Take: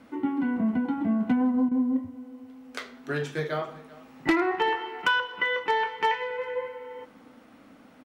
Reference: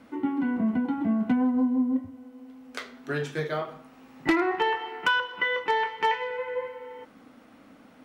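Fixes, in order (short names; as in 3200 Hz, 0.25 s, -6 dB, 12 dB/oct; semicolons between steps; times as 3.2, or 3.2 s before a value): interpolate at 1.69, 23 ms; inverse comb 0.39 s -20.5 dB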